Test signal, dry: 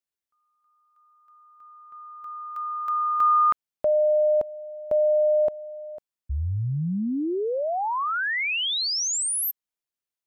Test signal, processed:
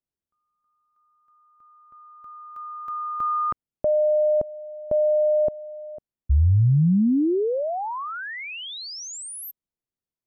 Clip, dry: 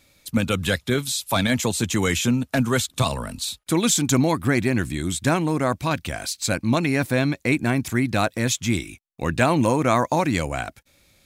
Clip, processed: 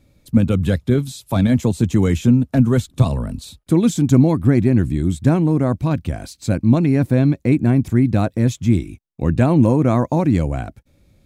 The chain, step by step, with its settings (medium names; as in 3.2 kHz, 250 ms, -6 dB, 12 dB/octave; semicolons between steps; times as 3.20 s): tilt shelf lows +10 dB, about 640 Hz